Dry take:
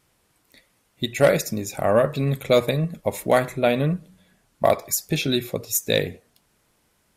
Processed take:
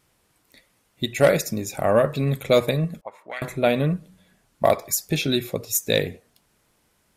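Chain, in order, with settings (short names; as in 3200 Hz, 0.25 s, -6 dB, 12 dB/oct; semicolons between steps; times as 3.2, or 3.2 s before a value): 3.01–3.42 auto-wah 740–2500 Hz, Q 3.4, up, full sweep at -13.5 dBFS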